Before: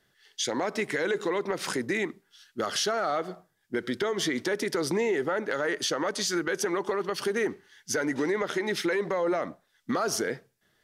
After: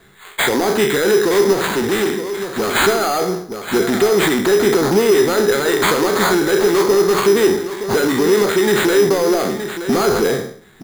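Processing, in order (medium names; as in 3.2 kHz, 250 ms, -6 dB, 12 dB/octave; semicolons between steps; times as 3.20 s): spectral sustain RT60 0.45 s; Chebyshev low-pass 4.8 kHz, order 4; band-stop 600 Hz, Q 12; in parallel at +2 dB: compression, threshold -36 dBFS, peak gain reduction 13 dB; on the sum: bass shelf 220 Hz +8 dB; saturation -22.5 dBFS, distortion -12 dB; on a send: delay 921 ms -10.5 dB; 1.53–2.75 s: on the sum: hard clipper -27.5 dBFS, distortion -21 dB; graphic EQ with 31 bands 200 Hz +4 dB, 400 Hz +8 dB, 800 Hz +4 dB, 4 kHz +12 dB; sample-and-hold 8×; trim +8 dB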